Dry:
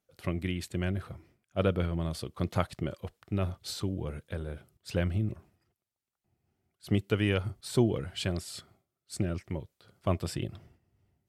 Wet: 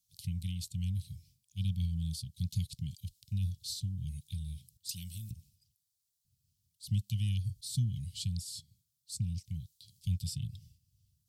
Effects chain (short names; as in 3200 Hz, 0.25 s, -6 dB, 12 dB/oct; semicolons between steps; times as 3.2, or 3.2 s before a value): inverse Chebyshev band-stop 410–1500 Hz, stop band 60 dB; 4.89–5.31 RIAA curve recording; mismatched tape noise reduction encoder only